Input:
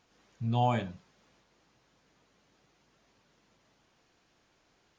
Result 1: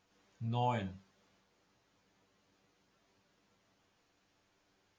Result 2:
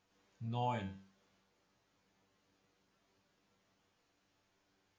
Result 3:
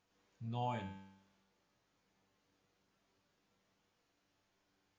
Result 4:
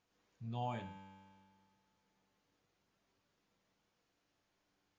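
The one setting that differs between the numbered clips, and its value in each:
tuned comb filter, decay: 0.15, 0.38, 0.86, 2 seconds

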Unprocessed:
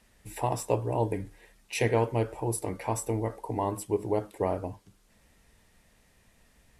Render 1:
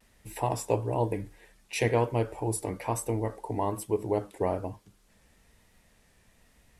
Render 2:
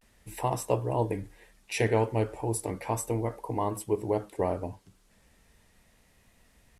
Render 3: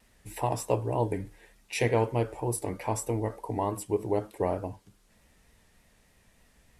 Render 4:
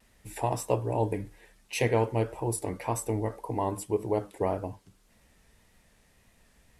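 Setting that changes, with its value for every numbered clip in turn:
pitch vibrato, speed: 1.1, 0.36, 3.3, 1.8 Hertz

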